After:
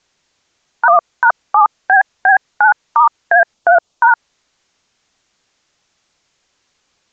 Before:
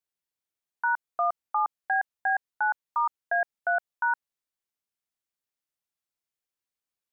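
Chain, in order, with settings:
0:03.54–0:04.09: parametric band 1,800 Hz −10.5 dB 0.78 octaves
compressor whose output falls as the input rises −30 dBFS, ratio −1
pitch vibrato 14 Hz 58 cents
0:00.88–0:01.30: reverse
boost into a limiter +26 dB
level −1 dB
AAC 64 kbit/s 16,000 Hz

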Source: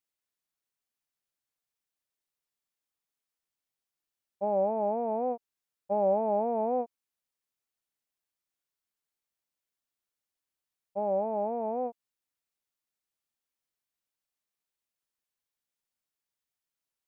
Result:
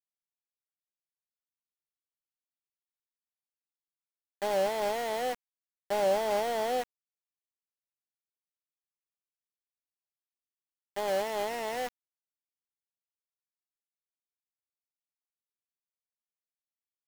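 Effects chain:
variable-slope delta modulation 16 kbit/s
resonant band-pass 560 Hz, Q 0.52
centre clipping without the shift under −31.5 dBFS

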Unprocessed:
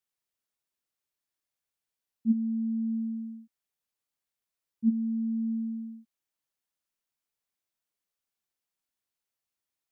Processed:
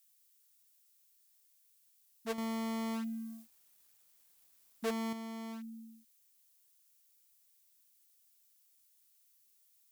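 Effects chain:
wavefolder on the positive side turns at −28.5 dBFS
first difference
0:02.38–0:05.13: leveller curve on the samples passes 2
level +16.5 dB

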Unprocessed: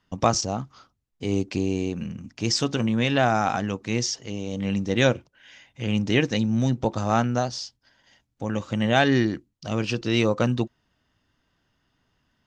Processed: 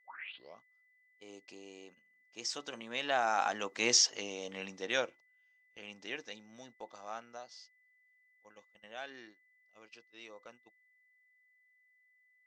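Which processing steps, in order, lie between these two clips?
turntable start at the beginning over 0.66 s
source passing by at 0:04.00, 8 m/s, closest 2.1 metres
high-pass filter 570 Hz 12 dB per octave
noise gate −59 dBFS, range −24 dB
steady tone 2,000 Hz −70 dBFS
level +2.5 dB

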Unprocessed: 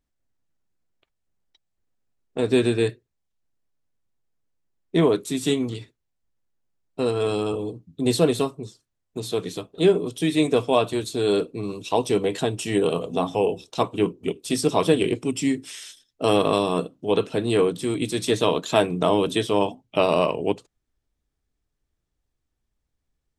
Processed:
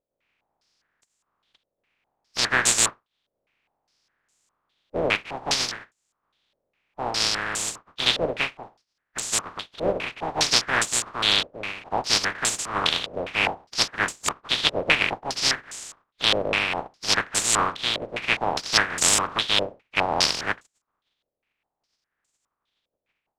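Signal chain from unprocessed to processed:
compressing power law on the bin magnitudes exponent 0.1
low-pass on a step sequencer 4.9 Hz 560–7,400 Hz
level −2.5 dB

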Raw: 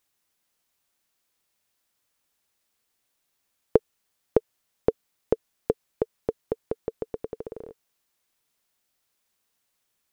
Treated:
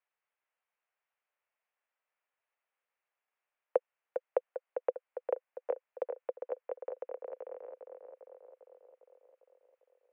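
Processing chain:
on a send: tape delay 401 ms, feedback 66%, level −5.5 dB, low-pass 1,900 Hz
on the sum: single-sideband voice off tune +57 Hz 430–2,600 Hz
level −6.5 dB

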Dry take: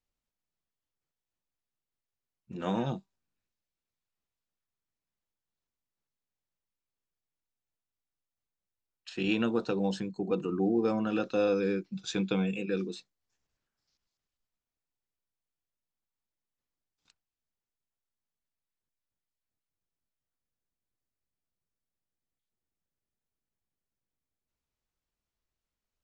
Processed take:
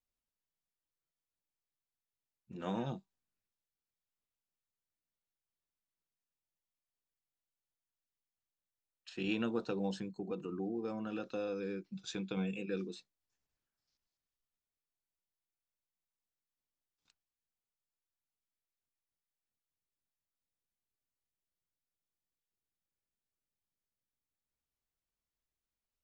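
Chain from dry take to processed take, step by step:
0:10.14–0:12.37: downward compressor 2 to 1, threshold −32 dBFS, peak gain reduction 5.5 dB
level −6.5 dB

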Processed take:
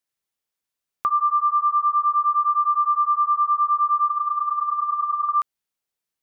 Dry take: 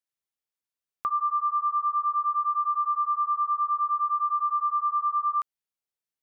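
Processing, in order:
0:02.48–0:03.47: spectral peaks only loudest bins 4
0:04.10–0:05.29: compressor whose output falls as the input rises −28 dBFS, ratio −0.5
level +6 dB

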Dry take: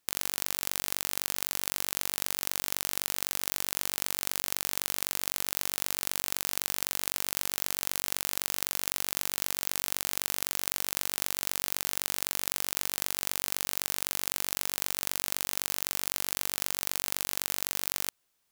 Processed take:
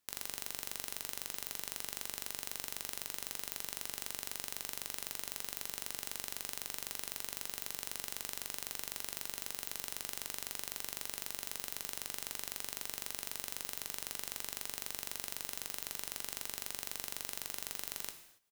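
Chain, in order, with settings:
output level in coarse steps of 19 dB
double-tracking delay 19 ms −13 dB
on a send: convolution reverb, pre-delay 3 ms, DRR 7 dB
on the sum: level −4.5 dB

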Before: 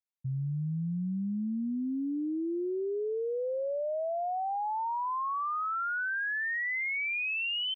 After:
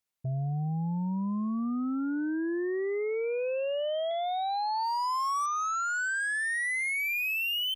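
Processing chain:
0:04.11–0:05.46: graphic EQ with 15 bands 100 Hz −6 dB, 250 Hz −10 dB, 2,500 Hz +11 dB
harmonic generator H 2 −33 dB, 5 −15 dB, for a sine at −29 dBFS
level +2 dB

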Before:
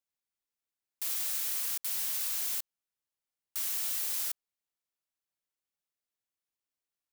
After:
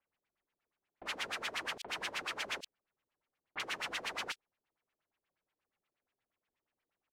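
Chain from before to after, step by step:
multiband delay without the direct sound lows, highs 40 ms, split 3,200 Hz
auto-filter low-pass sine 8.4 Hz 370–3,000 Hz
level +8.5 dB

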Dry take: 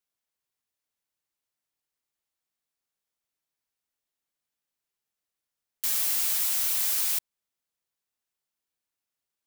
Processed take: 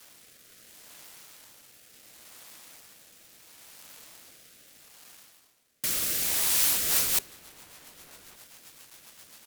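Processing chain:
mu-law and A-law mismatch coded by mu
low-shelf EQ 83 Hz −8 dB
notch filter 390 Hz, Q 12
reversed playback
upward compression, threshold −38 dBFS
reversed playback
sine wavefolder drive 11 dB, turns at −13.5 dBFS
rotating-speaker cabinet horn 0.7 Hz, later 7.5 Hz, at 0:06.46
slap from a distant wall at 200 metres, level −18 dB
on a send at −19 dB: convolution reverb RT60 2.0 s, pre-delay 6 ms
on the sum: level −4 dB

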